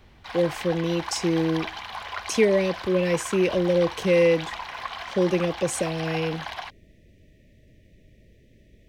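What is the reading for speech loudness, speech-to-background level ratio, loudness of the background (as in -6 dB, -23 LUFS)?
-24.0 LUFS, 11.0 dB, -35.0 LUFS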